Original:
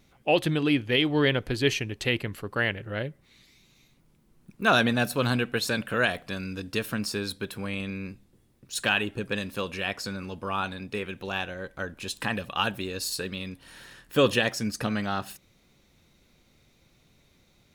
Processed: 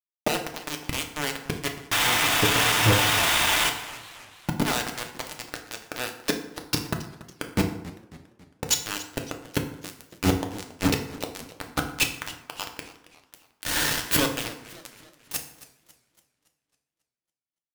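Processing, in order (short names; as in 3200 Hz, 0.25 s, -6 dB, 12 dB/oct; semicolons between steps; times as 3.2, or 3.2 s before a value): 5.52–6.39 elliptic high-pass 200 Hz; in parallel at -1.5 dB: limiter -21 dBFS, peak gain reduction 11 dB; on the sum: flipped gate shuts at -20 dBFS, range -26 dB; vibrato 13 Hz 22 cents; 1.91–3.7 painted sound noise 630–3800 Hz -41 dBFS; companded quantiser 2-bit; FDN reverb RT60 0.78 s, low-frequency decay 1×, high-frequency decay 0.65×, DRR 3 dB; warbling echo 0.277 s, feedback 49%, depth 206 cents, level -17.5 dB; gain +8 dB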